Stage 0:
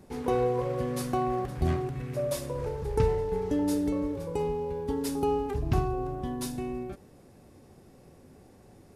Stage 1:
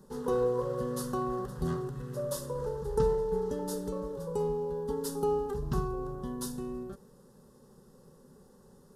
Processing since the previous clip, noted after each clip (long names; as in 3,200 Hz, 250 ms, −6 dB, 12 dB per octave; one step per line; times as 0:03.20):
phaser with its sweep stopped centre 460 Hz, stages 8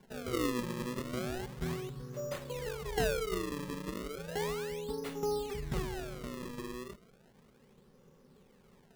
sample-and-hold swept by an LFO 34×, swing 160% 0.34 Hz
level −4.5 dB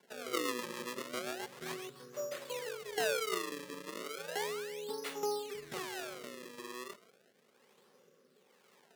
Bessel high-pass filter 620 Hz, order 2
rotating-speaker cabinet horn 7.5 Hz, later 1.1 Hz, at 0:01.71
level +5 dB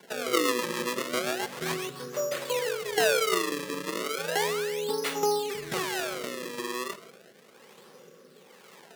in parallel at −1 dB: downward compressor, threshold −46 dBFS, peak gain reduction 16 dB
on the sum: rectangular room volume 3,400 cubic metres, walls furnished, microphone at 0.66 metres
level +8 dB